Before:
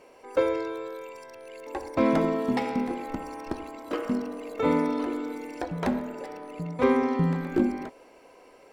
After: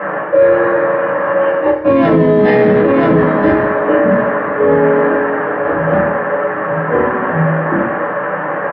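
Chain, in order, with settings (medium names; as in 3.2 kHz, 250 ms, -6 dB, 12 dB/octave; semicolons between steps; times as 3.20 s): every event in the spectrogram widened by 60 ms; Doppler pass-by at 2.09 s, 17 m/s, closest 1.7 m; bass shelf 450 Hz +12 dB; feedback comb 210 Hz, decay 0.73 s, harmonics all, mix 60%; band noise 150–1700 Hz -60 dBFS; level-controlled noise filter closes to 1.3 kHz, open at -28 dBFS; cabinet simulation 110–4000 Hz, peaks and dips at 120 Hz +5 dB, 250 Hz -6 dB, 570 Hz +10 dB, 1.1 kHz +5 dB, 1.7 kHz +9 dB, 2.9 kHz +7 dB; on a send: delay 980 ms -21.5 dB; on the sum: simulated room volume 120 m³, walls furnished, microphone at 2.2 m; reverse; compression 12:1, threshold -36 dBFS, peak gain reduction 24.5 dB; reverse; loudness maximiser +33.5 dB; trim -1 dB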